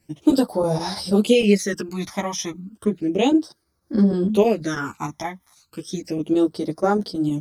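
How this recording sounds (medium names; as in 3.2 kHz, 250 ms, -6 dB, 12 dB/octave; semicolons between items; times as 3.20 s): phasing stages 12, 0.33 Hz, lowest notch 460–2800 Hz; chopped level 6.3 Hz, depth 65%, duty 90%; a shimmering, thickened sound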